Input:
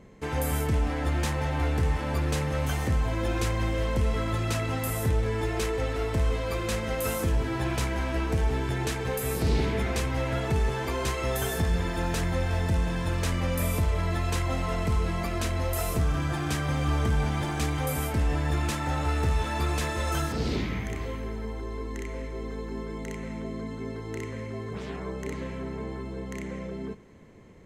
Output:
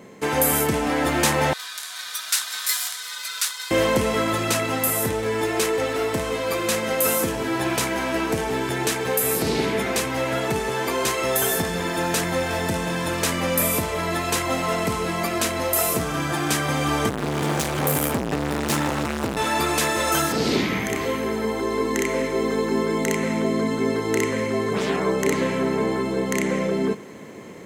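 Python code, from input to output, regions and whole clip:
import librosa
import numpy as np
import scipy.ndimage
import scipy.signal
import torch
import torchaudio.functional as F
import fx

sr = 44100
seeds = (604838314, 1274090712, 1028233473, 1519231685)

y = fx.chain(x, sr, fx.ellip_highpass(hz=2500.0, order=4, stop_db=80),
    fx.ring_mod(carrier_hz=1100.0), at=(1.53, 3.71))
y = fx.chain(y, sr, fx.highpass(hz=49.0, slope=12),
    fx.low_shelf(hz=330.0, db=10.5),
    fx.overload_stage(gain_db=27.0), at=(17.09, 19.37))
y = scipy.signal.sosfilt(scipy.signal.butter(2, 210.0, 'highpass', fs=sr, output='sos'), y)
y = fx.high_shelf(y, sr, hz=8500.0, db=9.0)
y = fx.rider(y, sr, range_db=10, speed_s=2.0)
y = y * librosa.db_to_amplitude(9.0)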